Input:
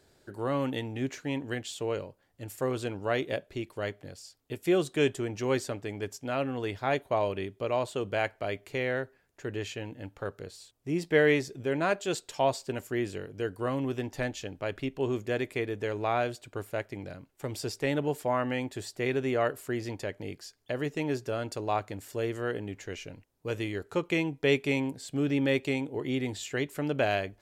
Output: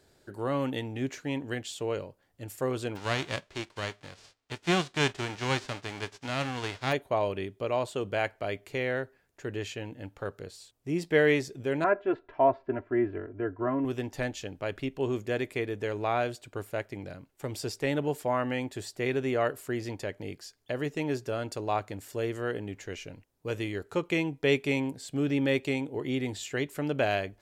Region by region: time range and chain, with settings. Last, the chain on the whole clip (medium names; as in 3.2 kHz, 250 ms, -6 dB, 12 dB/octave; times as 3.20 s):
2.95–6.91 s: formants flattened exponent 0.3 + distance through air 120 m
11.84–13.85 s: low-pass 1.8 kHz 24 dB/octave + comb 3 ms, depth 82%
whole clip: none